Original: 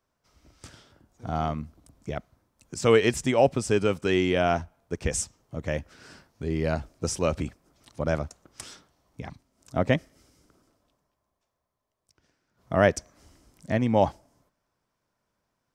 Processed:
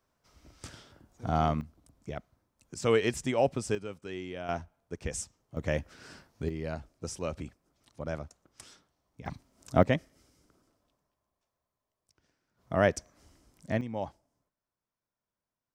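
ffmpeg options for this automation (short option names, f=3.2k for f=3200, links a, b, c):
-af "asetnsamples=n=441:p=0,asendcmd='1.61 volume volume -6dB;3.75 volume volume -16dB;4.49 volume volume -8dB;5.57 volume volume -1dB;6.49 volume volume -9.5dB;9.26 volume volume 3dB;9.83 volume volume -4.5dB;13.81 volume volume -14dB',volume=1dB"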